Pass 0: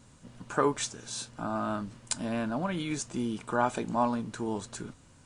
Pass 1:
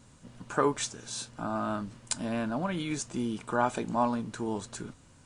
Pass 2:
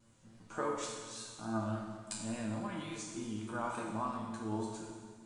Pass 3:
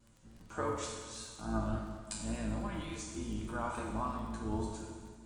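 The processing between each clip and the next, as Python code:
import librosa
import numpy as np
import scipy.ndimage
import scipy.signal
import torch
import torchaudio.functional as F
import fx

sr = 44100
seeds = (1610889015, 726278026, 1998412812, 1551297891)

y1 = x
y2 = fx.comb_fb(y1, sr, f0_hz=110.0, decay_s=0.58, harmonics='all', damping=0.0, mix_pct=90)
y2 = fx.vibrato(y2, sr, rate_hz=3.5, depth_cents=69.0)
y2 = fx.rev_plate(y2, sr, seeds[0], rt60_s=1.7, hf_ratio=0.9, predelay_ms=0, drr_db=1.5)
y2 = F.gain(torch.from_numpy(y2), 1.5).numpy()
y3 = fx.octave_divider(y2, sr, octaves=2, level_db=-1.0)
y3 = fx.dmg_crackle(y3, sr, seeds[1], per_s=31.0, level_db=-48.0)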